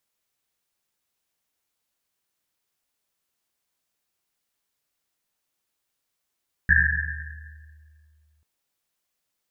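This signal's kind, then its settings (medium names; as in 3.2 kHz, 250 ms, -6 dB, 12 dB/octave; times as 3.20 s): Risset drum length 1.74 s, pitch 76 Hz, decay 2.58 s, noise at 1.7 kHz, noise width 210 Hz, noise 65%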